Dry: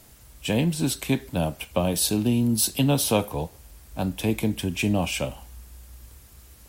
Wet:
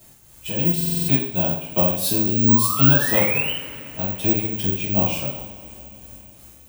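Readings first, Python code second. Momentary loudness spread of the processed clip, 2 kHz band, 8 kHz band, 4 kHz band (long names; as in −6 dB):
14 LU, +6.5 dB, −1.0 dB, +0.5 dB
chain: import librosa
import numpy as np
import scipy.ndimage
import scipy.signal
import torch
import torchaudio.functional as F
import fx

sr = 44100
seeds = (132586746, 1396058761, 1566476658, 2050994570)

y = x * (1.0 - 0.61 / 2.0 + 0.61 / 2.0 * np.cos(2.0 * np.pi * 2.8 * (np.arange(len(x)) / sr)))
y = fx.spec_paint(y, sr, seeds[0], shape='rise', start_s=2.48, length_s=1.04, low_hz=940.0, high_hz=3100.0, level_db=-30.0)
y = fx.rev_double_slope(y, sr, seeds[1], early_s=0.56, late_s=4.0, knee_db=-20, drr_db=-9.0)
y = (np.kron(y[::2], np.eye(2)[0]) * 2)[:len(y)]
y = fx.buffer_glitch(y, sr, at_s=(0.76,), block=2048, repeats=6)
y = F.gain(torch.from_numpy(y), -6.5).numpy()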